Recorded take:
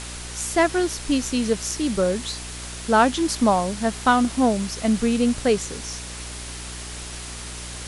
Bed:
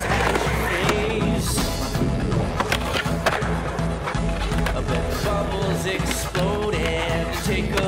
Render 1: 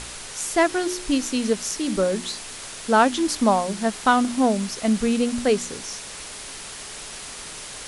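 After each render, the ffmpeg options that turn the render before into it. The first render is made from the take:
-af "bandreject=f=60:t=h:w=4,bandreject=f=120:t=h:w=4,bandreject=f=180:t=h:w=4,bandreject=f=240:t=h:w=4,bandreject=f=300:t=h:w=4,bandreject=f=360:t=h:w=4"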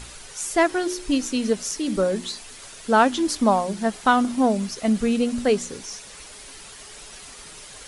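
-af "afftdn=nr=8:nf=-37"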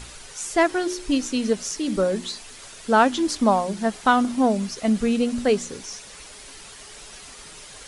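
-filter_complex "[0:a]acrossover=split=10000[a][b];[b]acompressor=threshold=-54dB:ratio=4:attack=1:release=60[c];[a][c]amix=inputs=2:normalize=0"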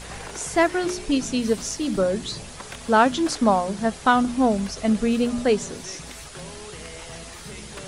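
-filter_complex "[1:a]volume=-17.5dB[a];[0:a][a]amix=inputs=2:normalize=0"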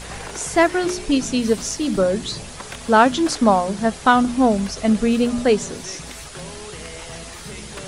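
-af "volume=3.5dB"

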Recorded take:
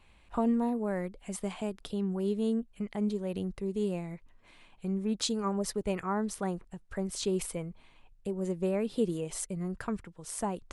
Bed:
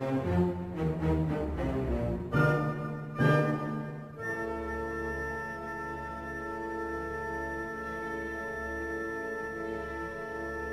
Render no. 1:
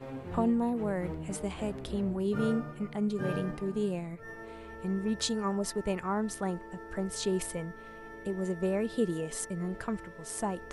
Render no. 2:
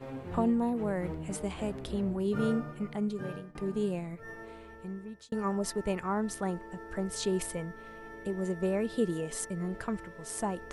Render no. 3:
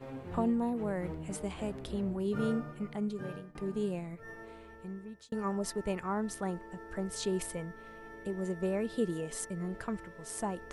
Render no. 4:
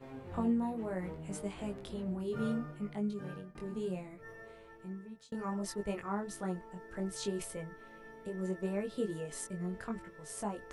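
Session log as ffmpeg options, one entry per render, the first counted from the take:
-filter_complex "[1:a]volume=-10.5dB[a];[0:a][a]amix=inputs=2:normalize=0"
-filter_complex "[0:a]asplit=3[a][b][c];[a]atrim=end=3.55,asetpts=PTS-STARTPTS,afade=t=out:st=2.95:d=0.6:silence=0.0707946[d];[b]atrim=start=3.55:end=5.32,asetpts=PTS-STARTPTS,afade=t=in:d=0.004:c=hsin:silence=0.0707946,afade=t=out:st=0.79:d=0.98[e];[c]atrim=start=5.32,asetpts=PTS-STARTPTS,afade=t=in:d=0.004:c=hsin[f];[d][e][f]concat=n=3:v=0:a=1"
-af "volume=-2.5dB"
-af "flanger=delay=19.5:depth=2.8:speed=0.67"

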